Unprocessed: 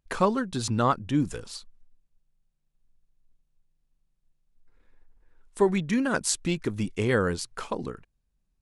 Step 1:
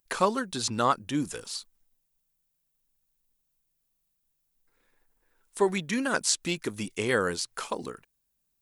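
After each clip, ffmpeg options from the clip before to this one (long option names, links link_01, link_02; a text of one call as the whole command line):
ffmpeg -i in.wav -filter_complex "[0:a]acrossover=split=6400[link_01][link_02];[link_02]acompressor=threshold=-51dB:ratio=4:attack=1:release=60[link_03];[link_01][link_03]amix=inputs=2:normalize=0,aemphasis=mode=production:type=bsi" out.wav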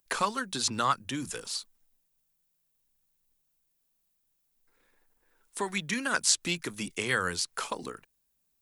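ffmpeg -i in.wav -filter_complex "[0:a]acrossover=split=170|1000[link_01][link_02][link_03];[link_01]flanger=delay=19:depth=4.5:speed=0.37[link_04];[link_02]acompressor=threshold=-37dB:ratio=6[link_05];[link_04][link_05][link_03]amix=inputs=3:normalize=0,volume=1.5dB" out.wav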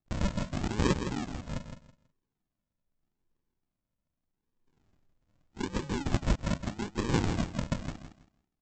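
ffmpeg -i in.wav -af "aresample=16000,acrusher=samples=32:mix=1:aa=0.000001:lfo=1:lforange=19.2:lforate=0.82,aresample=44100,aecho=1:1:163|326|489:0.376|0.0827|0.0182" out.wav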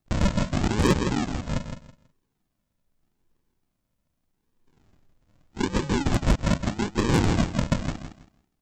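ffmpeg -i in.wav -af "aeval=exprs='0.224*sin(PI/2*1.78*val(0)/0.224)':channel_layout=same" out.wav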